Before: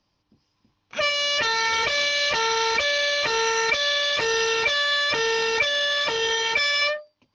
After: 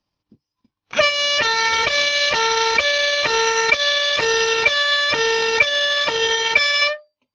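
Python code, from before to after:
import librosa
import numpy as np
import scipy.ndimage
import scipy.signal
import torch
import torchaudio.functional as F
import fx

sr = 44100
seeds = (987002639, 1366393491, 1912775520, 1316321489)

y = fx.noise_reduce_blind(x, sr, reduce_db=11)
y = fx.transient(y, sr, attack_db=6, sustain_db=-9)
y = F.gain(torch.from_numpy(y), 4.5).numpy()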